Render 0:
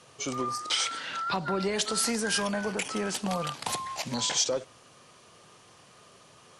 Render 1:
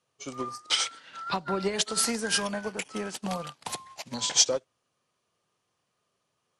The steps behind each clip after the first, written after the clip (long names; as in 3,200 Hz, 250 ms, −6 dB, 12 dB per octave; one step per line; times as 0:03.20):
expander for the loud parts 2.5 to 1, over −43 dBFS
level +7 dB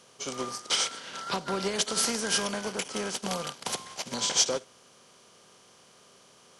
compressor on every frequency bin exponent 0.6
level −4 dB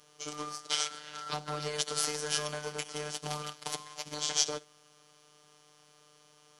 phases set to zero 150 Hz
level −2.5 dB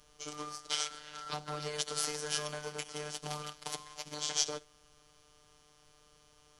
background noise brown −67 dBFS
level −3 dB